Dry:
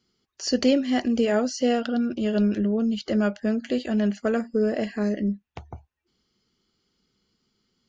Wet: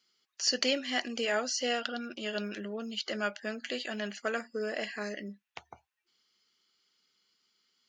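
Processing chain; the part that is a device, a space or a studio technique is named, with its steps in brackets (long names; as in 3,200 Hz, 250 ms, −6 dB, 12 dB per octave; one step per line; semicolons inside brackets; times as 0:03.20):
filter by subtraction (in parallel: low-pass filter 2,200 Hz 12 dB per octave + polarity inversion)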